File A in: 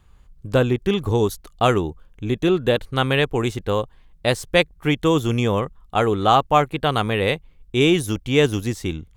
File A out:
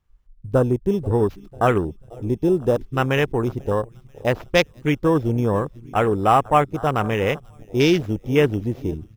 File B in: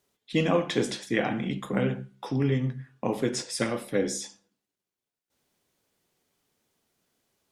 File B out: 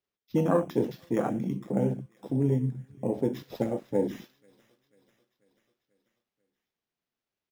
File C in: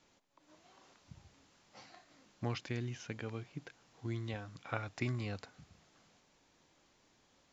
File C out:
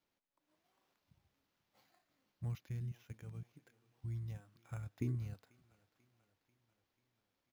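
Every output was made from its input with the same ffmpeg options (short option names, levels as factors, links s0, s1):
-af "aecho=1:1:490|980|1470|1960|2450:0.106|0.0625|0.0369|0.0218|0.0128,acrusher=samples=5:mix=1:aa=0.000001,afwtdn=0.0501"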